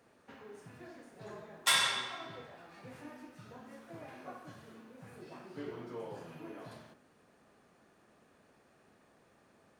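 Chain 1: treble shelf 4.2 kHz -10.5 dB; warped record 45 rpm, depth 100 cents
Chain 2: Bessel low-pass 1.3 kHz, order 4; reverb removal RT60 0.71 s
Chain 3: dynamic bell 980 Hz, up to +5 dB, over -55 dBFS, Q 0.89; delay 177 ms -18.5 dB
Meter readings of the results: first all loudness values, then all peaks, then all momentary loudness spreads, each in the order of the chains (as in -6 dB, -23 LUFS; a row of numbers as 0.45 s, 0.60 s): -41.5 LUFS, -48.0 LUFS, -35.0 LUFS; -18.5 dBFS, -23.5 dBFS, -13.0 dBFS; 21 LU, 15 LU, 24 LU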